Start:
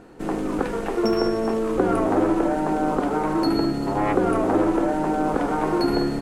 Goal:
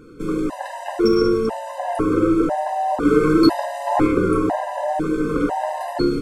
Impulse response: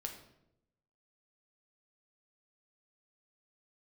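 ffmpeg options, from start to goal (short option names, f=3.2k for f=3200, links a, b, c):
-filter_complex "[0:a]asettb=1/sr,asplit=3[a][b][c];[a]atrim=end=3.054[d];[b]atrim=start=3.05:end=4.07,asetpts=PTS-STARTPTS,afade=t=in:d=0.004:c=qsin,afade=t=out:st=1.016:d=0.004:c=qsin,acontrast=35[e];[c]atrim=start=4.066[f];[d][e]acrossfade=d=0.004:c1=hsin:c2=qsin[g];[g][f]acrossfade=d=0.004:c1=qsin:c2=hsin[h];[1:a]atrim=start_sample=2205,afade=t=out:st=0.34:d=0.01,atrim=end_sample=15435,atrim=end_sample=3969[i];[h][i]afir=irnorm=-1:irlink=0,acontrast=58,afftfilt=real='re*gt(sin(2*PI*1*pts/sr)*(1-2*mod(floor(b*sr/1024/520),2)),0)':imag='im*gt(sin(2*PI*1*pts/sr)*(1-2*mod(floor(b*sr/1024/520),2)),0)':win_size=1024:overlap=0.75"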